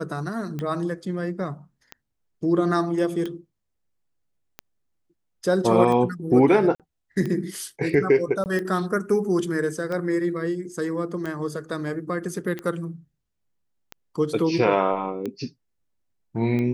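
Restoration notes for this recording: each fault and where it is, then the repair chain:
scratch tick 45 rpm −18 dBFS
0:06.75–0:06.80: drop-out 47 ms
0:08.44–0:08.46: drop-out 19 ms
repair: click removal
repair the gap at 0:06.75, 47 ms
repair the gap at 0:08.44, 19 ms

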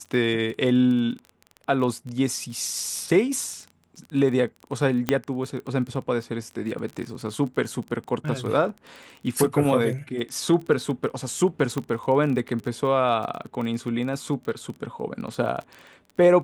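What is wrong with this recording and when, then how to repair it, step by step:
surface crackle 22 per second −31 dBFS
0:05.09: click −7 dBFS
0:11.78: click −15 dBFS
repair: click removal

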